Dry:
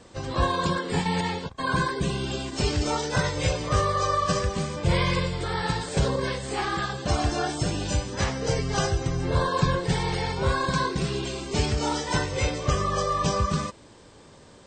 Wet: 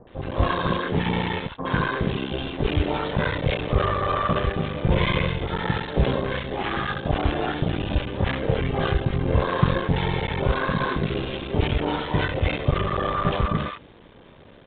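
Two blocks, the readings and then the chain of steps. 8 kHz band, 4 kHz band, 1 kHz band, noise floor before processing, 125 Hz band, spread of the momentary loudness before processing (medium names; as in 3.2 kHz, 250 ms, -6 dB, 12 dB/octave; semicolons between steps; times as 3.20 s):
under -40 dB, -1.0 dB, 0.0 dB, -50 dBFS, +2.5 dB, 4 LU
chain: cycle switcher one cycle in 3, muted; bands offset in time lows, highs 70 ms, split 1 kHz; resampled via 8 kHz; trim +4.5 dB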